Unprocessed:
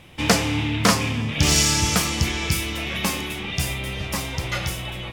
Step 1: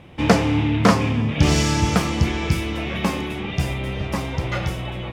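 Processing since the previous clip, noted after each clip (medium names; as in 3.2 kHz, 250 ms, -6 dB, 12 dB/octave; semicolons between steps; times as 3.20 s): high-pass 530 Hz 6 dB/octave; tilt EQ -4.5 dB/octave; trim +3.5 dB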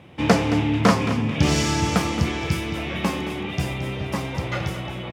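high-pass 84 Hz; on a send: feedback delay 221 ms, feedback 23%, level -12 dB; on the sum: trim -1.5 dB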